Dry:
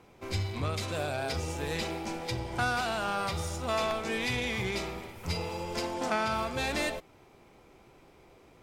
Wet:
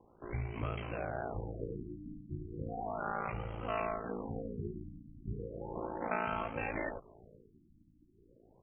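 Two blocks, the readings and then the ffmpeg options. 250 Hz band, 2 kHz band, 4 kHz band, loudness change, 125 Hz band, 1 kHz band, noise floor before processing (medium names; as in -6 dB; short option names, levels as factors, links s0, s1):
-5.5 dB, -10.0 dB, -22.5 dB, -7.5 dB, -6.0 dB, -6.5 dB, -58 dBFS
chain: -filter_complex "[0:a]asplit=4[s0][s1][s2][s3];[s1]adelay=485,afreqshift=-130,volume=0.0708[s4];[s2]adelay=970,afreqshift=-260,volume=0.0355[s5];[s3]adelay=1455,afreqshift=-390,volume=0.0178[s6];[s0][s4][s5][s6]amix=inputs=4:normalize=0,aeval=exprs='val(0)*sin(2*PI*28*n/s)':c=same,afftfilt=real='re*lt(b*sr/1024,320*pow(3300/320,0.5+0.5*sin(2*PI*0.35*pts/sr)))':imag='im*lt(b*sr/1024,320*pow(3300/320,0.5+0.5*sin(2*PI*0.35*pts/sr)))':win_size=1024:overlap=0.75,volume=0.75"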